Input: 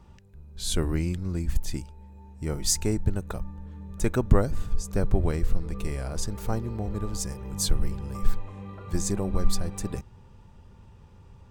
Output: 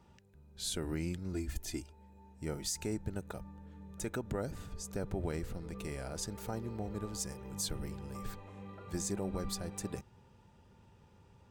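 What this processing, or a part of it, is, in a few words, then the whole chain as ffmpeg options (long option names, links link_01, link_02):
PA system with an anti-feedback notch: -filter_complex "[0:a]asettb=1/sr,asplit=3[link_01][link_02][link_03];[link_01]atrim=end=1.334[link_04];[link_02]atrim=start=1.33:end=1.93,asetpts=PTS-STARTPTS,afade=type=in:duration=0.004:curve=qsin,afade=type=out:start_time=0.596:duration=0.004:curve=qsin,aecho=1:1:2.9:0.66,atrim=end_sample=26460[link_05];[link_03]atrim=start=1.926[link_06];[link_04][link_05]acrossfade=duration=0.004:curve1=hsin:curve2=qsin[link_07];[link_07][link_06]acrossfade=duration=0.004:curve1=qsin:curve2=hsin,highpass=frequency=170:poles=1,asuperstop=centerf=1100:order=4:qfactor=7.9,alimiter=limit=-21dB:level=0:latency=1:release=91,volume=-5dB"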